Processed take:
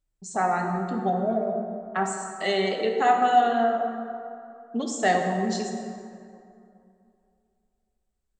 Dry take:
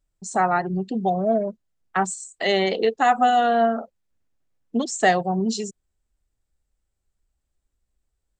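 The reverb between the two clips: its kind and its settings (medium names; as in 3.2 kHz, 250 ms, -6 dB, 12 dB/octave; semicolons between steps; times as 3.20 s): plate-style reverb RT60 2.6 s, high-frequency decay 0.5×, DRR 2 dB; trim -5.5 dB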